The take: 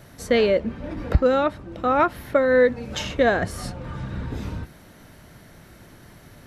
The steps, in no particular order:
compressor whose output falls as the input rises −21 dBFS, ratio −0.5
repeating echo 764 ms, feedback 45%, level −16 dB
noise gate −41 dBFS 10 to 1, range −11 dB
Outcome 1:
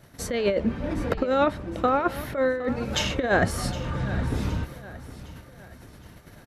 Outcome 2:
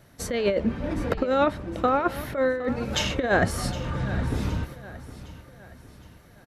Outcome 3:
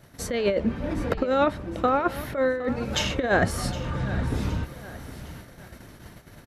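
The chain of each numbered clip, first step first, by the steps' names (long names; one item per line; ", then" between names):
compressor whose output falls as the input rises, then noise gate, then repeating echo
noise gate, then compressor whose output falls as the input rises, then repeating echo
compressor whose output falls as the input rises, then repeating echo, then noise gate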